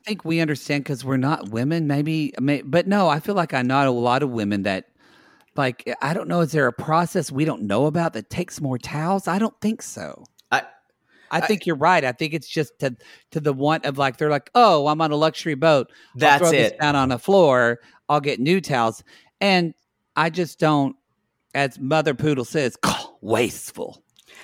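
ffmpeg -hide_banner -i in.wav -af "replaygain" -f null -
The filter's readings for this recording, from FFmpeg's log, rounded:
track_gain = +1.2 dB
track_peak = 0.578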